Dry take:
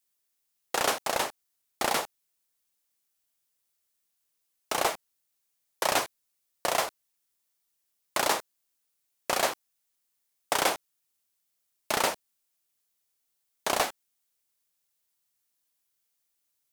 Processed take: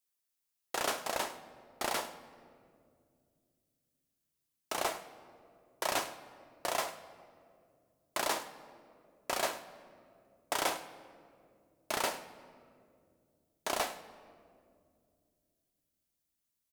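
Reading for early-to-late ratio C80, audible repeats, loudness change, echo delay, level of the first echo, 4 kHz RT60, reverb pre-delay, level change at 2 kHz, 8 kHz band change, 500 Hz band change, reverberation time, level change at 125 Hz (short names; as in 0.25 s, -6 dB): 12.5 dB, 1, -7.0 dB, 0.104 s, -15.5 dB, 1.3 s, 3 ms, -6.5 dB, -6.5 dB, -6.0 dB, 2.3 s, -7.0 dB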